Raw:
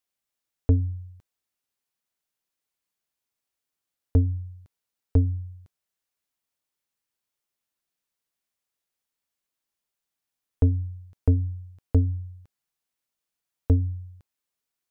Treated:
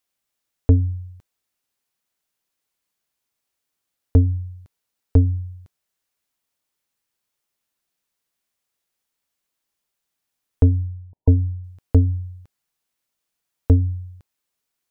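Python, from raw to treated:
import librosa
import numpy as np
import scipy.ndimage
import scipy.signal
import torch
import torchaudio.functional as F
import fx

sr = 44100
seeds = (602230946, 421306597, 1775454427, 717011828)

y = fx.brickwall_lowpass(x, sr, high_hz=1000.0, at=(10.83, 11.64))
y = y * librosa.db_to_amplitude(5.5)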